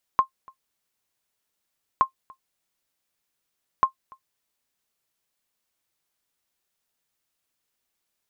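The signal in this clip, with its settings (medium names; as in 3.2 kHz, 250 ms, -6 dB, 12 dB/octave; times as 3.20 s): sonar ping 1.06 kHz, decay 0.10 s, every 1.82 s, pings 3, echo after 0.29 s, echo -27.5 dB -8.5 dBFS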